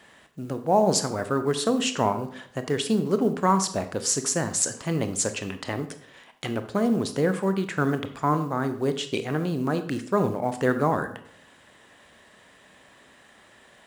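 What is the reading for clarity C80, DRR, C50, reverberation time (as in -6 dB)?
15.5 dB, 9.0 dB, 12.0 dB, 0.60 s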